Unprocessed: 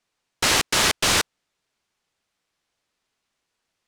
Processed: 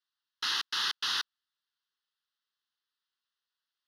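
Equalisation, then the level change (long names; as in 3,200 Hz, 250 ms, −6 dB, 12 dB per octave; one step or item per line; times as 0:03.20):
resonant band-pass 2,900 Hz, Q 0.75
phaser with its sweep stopped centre 2,300 Hz, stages 6
−6.0 dB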